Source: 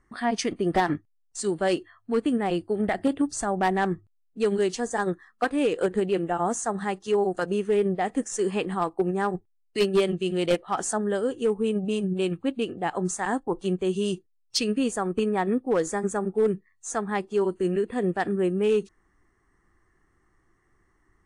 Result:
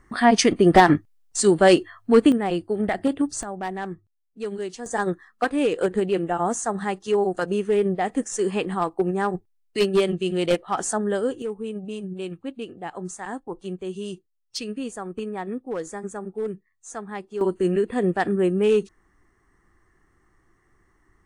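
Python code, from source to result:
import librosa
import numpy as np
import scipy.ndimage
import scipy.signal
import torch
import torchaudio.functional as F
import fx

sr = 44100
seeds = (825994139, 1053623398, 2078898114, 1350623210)

y = fx.gain(x, sr, db=fx.steps((0.0, 9.5), (2.32, 1.5), (3.43, -6.5), (4.86, 2.0), (11.42, -6.0), (17.41, 3.5)))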